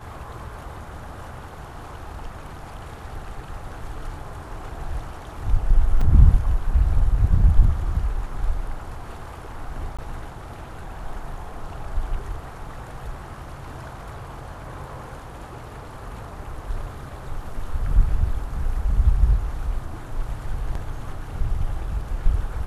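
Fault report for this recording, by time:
0:06.01: drop-out 4.4 ms
0:09.97–0:09.99: drop-out 16 ms

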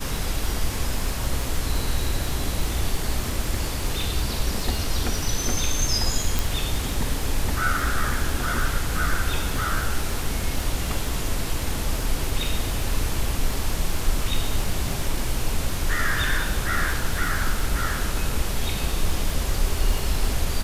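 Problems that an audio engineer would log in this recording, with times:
surface crackle 44 per second −27 dBFS
0:06.39: click

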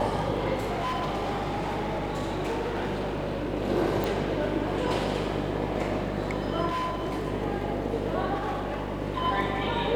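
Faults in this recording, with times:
mains buzz 50 Hz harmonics 12 −33 dBFS
0:00.56–0:03.54: clipping −26 dBFS
0:04.04: click
0:06.68–0:07.26: clipping −26.5 dBFS
0:08.34–0:09.02: clipping −26.5 dBFS

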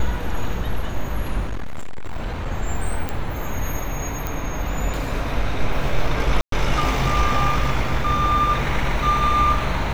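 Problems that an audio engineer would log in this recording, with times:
0:01.46–0:02.48: clipping −21.5 dBFS
0:03.09: click −11 dBFS
0:04.27: click −11 dBFS
0:06.41–0:06.52: drop-out 113 ms

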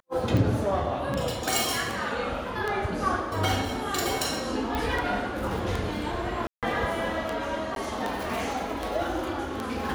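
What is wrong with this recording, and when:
scratch tick 78 rpm
0:04.75: click −16 dBFS
0:06.47–0:06.63: drop-out 157 ms
0:07.75–0:07.76: drop-out 12 ms

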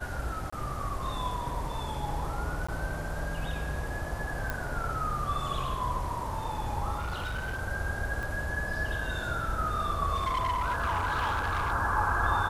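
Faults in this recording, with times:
0:00.50–0:00.53: drop-out 25 ms
0:02.67–0:02.69: drop-out 15 ms
0:04.50: click −17 dBFS
0:06.99–0:07.61: clipping −30 dBFS
0:08.23: click
0:10.14–0:11.73: clipping −25.5 dBFS

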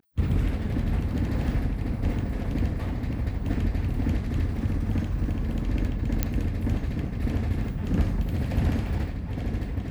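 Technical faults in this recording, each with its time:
0:06.23: click −9 dBFS

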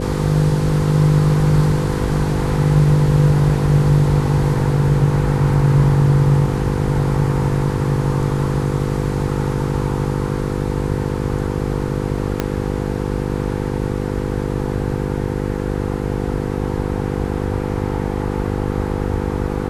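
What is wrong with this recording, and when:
mains buzz 50 Hz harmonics 10 −22 dBFS
0:12.40: click −5 dBFS

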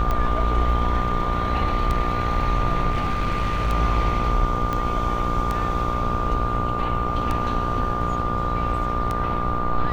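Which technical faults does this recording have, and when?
mains buzz 60 Hz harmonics 24 −28 dBFS
scratch tick 33 1/3 rpm −12 dBFS
whistle 1,200 Hz −26 dBFS
0:02.90–0:03.72: clipping −18 dBFS
0:04.73: click −13 dBFS

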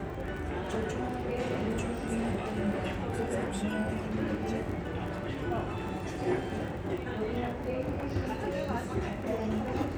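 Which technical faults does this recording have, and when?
surface crackle 31 per second −38 dBFS

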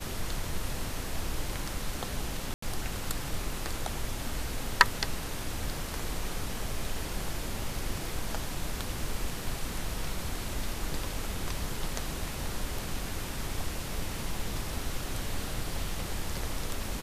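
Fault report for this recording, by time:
0:02.54–0:02.62: drop-out 84 ms

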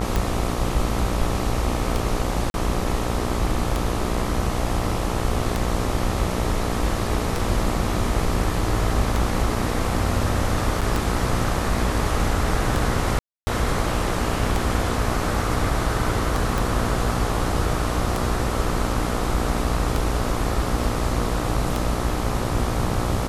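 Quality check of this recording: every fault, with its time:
mains buzz 60 Hz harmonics 22 −27 dBFS
scratch tick 33 1/3 rpm
0:02.50–0:02.54: drop-out 41 ms
0:10.81–0:10.82: drop-out 6.5 ms
0:13.19–0:13.47: drop-out 280 ms
0:16.58: click

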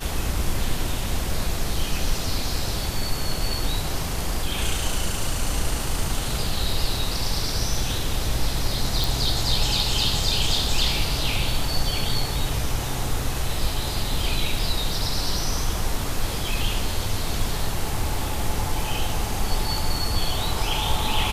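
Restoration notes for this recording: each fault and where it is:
0:09.04: click
0:14.59: drop-out 2.1 ms

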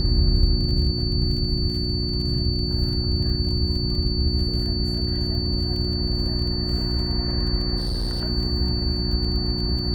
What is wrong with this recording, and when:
surface crackle 22 per second −31 dBFS
mains hum 60 Hz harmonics 6 −27 dBFS
whistle 4,500 Hz −28 dBFS
0:07.77–0:08.23: clipping −21.5 dBFS

